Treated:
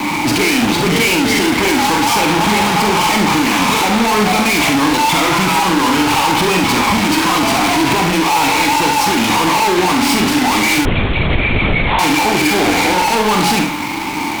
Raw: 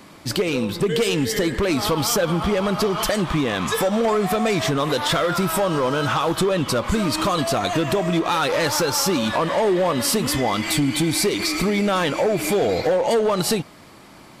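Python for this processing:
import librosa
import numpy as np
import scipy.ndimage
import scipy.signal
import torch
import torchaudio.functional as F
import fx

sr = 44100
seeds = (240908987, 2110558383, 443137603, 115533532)

p1 = scipy.signal.sosfilt(scipy.signal.butter(2, 66.0, 'highpass', fs=sr, output='sos'), x)
p2 = fx.peak_eq(p1, sr, hz=330.0, db=-11.5, octaves=1.5)
p3 = fx.rider(p2, sr, range_db=10, speed_s=0.5)
p4 = p2 + (p3 * librosa.db_to_amplitude(2.0))
p5 = fx.vowel_filter(p4, sr, vowel='u')
p6 = fx.quant_float(p5, sr, bits=2)
p7 = fx.fuzz(p6, sr, gain_db=53.0, gate_db=-60.0)
p8 = fx.doubler(p7, sr, ms=43.0, db=-6.0)
p9 = p8 + fx.echo_single(p8, sr, ms=71, db=-7.0, dry=0)
p10 = fx.lpc_vocoder(p9, sr, seeds[0], excitation='whisper', order=8, at=(10.85, 11.99))
y = p10 * librosa.db_to_amplitude(-1.0)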